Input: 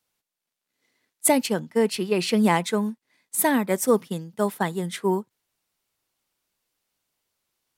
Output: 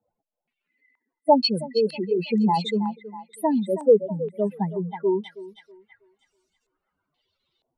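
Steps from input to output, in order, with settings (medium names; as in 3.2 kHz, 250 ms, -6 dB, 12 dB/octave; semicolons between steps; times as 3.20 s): spectral contrast enhancement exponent 3.7; thinning echo 322 ms, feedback 43%, high-pass 500 Hz, level -11 dB; step-sequenced low-pass 2.1 Hz 680–7000 Hz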